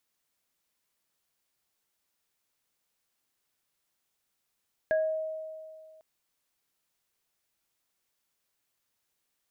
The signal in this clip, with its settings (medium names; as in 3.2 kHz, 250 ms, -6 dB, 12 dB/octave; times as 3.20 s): sine partials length 1.10 s, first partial 632 Hz, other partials 1.65 kHz, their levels -7 dB, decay 2.14 s, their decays 0.31 s, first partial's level -22 dB